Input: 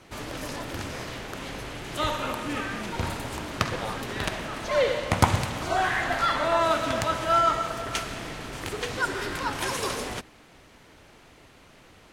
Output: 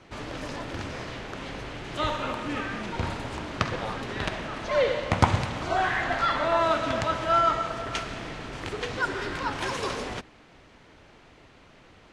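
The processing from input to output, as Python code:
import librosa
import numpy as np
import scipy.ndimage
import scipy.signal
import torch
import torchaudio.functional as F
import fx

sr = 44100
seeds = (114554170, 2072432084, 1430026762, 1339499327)

y = fx.air_absorb(x, sr, metres=82.0)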